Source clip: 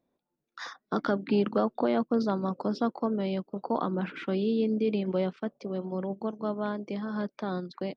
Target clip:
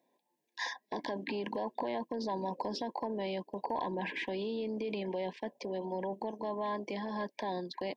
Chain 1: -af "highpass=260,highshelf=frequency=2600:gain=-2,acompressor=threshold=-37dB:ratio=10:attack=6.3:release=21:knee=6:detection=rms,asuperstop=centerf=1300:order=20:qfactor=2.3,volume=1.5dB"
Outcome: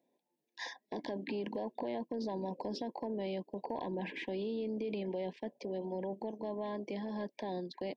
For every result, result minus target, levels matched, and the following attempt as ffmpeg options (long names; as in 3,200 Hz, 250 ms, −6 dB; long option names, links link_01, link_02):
1,000 Hz band −4.5 dB; 4,000 Hz band −2.5 dB
-af "highpass=260,highshelf=frequency=2600:gain=-2,acompressor=threshold=-37dB:ratio=10:attack=6.3:release=21:knee=6:detection=rms,asuperstop=centerf=1300:order=20:qfactor=2.3,equalizer=frequency=1200:width_type=o:width=0.97:gain=12,volume=1.5dB"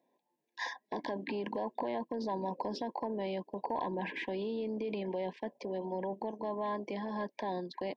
4,000 Hz band −3.5 dB
-af "highpass=260,highshelf=frequency=2600:gain=5,acompressor=threshold=-37dB:ratio=10:attack=6.3:release=21:knee=6:detection=rms,asuperstop=centerf=1300:order=20:qfactor=2.3,equalizer=frequency=1200:width_type=o:width=0.97:gain=12,volume=1.5dB"